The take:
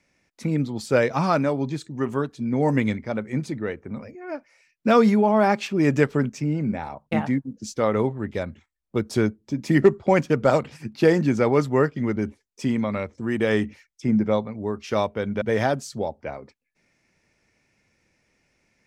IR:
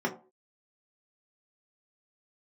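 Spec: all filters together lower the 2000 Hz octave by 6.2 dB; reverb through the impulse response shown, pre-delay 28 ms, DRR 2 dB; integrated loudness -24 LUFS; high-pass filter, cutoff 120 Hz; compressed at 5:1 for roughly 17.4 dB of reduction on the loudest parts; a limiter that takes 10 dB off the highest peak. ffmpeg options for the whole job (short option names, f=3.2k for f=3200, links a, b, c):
-filter_complex "[0:a]highpass=120,equalizer=f=2k:t=o:g=-8,acompressor=threshold=-31dB:ratio=5,alimiter=level_in=3dB:limit=-24dB:level=0:latency=1,volume=-3dB,asplit=2[a][b];[1:a]atrim=start_sample=2205,adelay=28[c];[b][c]afir=irnorm=-1:irlink=0,volume=-11dB[d];[a][d]amix=inputs=2:normalize=0,volume=9dB"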